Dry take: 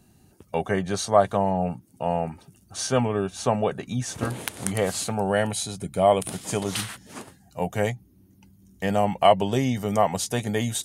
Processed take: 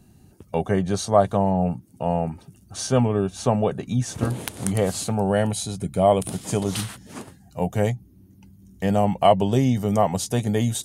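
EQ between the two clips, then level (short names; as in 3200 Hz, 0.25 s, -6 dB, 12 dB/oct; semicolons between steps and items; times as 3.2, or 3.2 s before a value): low shelf 330 Hz +6.5 dB; dynamic EQ 1900 Hz, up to -4 dB, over -41 dBFS, Q 1.1; 0.0 dB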